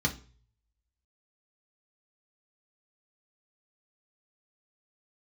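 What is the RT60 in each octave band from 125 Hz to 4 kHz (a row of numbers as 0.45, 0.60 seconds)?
0.85, 0.40, 0.40, 0.35, 0.35, 0.40 seconds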